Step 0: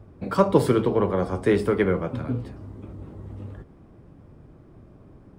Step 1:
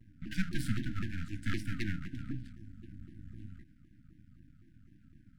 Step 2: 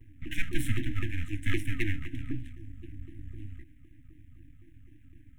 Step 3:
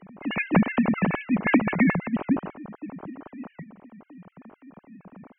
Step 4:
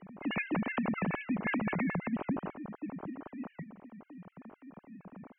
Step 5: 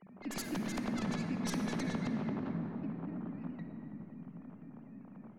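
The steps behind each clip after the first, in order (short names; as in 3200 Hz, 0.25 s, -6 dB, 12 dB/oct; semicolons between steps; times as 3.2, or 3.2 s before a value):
half-wave rectifier; FFT band-reject 320–1400 Hz; shaped vibrato saw down 3.9 Hz, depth 250 cents; gain -5.5 dB
fixed phaser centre 960 Hz, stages 8; gain +9 dB
sine-wave speech; gain +2.5 dB
air absorption 78 m; limiter -18 dBFS, peak gain reduction 10 dB; compressor, threshold -26 dBFS, peak gain reduction 5.5 dB; gain -3 dB
tracing distortion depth 0.45 ms; on a send at -3.5 dB: reverb RT60 3.5 s, pre-delay 47 ms; on the sum: gain -6.5 dB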